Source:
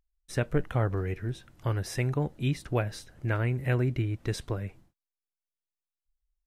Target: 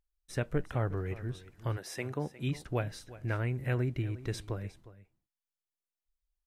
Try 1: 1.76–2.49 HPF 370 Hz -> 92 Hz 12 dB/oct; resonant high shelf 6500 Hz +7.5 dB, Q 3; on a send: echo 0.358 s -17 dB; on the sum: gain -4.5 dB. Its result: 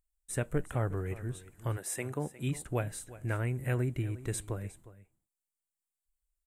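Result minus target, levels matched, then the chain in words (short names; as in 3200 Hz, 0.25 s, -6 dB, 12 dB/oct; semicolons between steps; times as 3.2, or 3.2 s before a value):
8000 Hz band +9.5 dB
1.76–2.49 HPF 370 Hz -> 92 Hz 12 dB/oct; on a send: echo 0.358 s -17 dB; on the sum: gain -4.5 dB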